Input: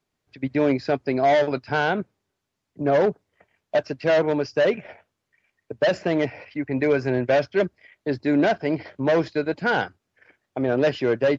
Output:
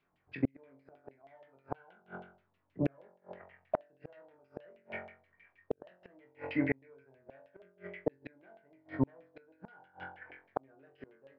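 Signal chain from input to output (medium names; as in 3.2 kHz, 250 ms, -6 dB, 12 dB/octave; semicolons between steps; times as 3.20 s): flutter echo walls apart 3.8 m, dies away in 0.5 s; LFO low-pass saw down 6.3 Hz 700–3000 Hz; inverted gate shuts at -14 dBFS, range -42 dB; trim -2.5 dB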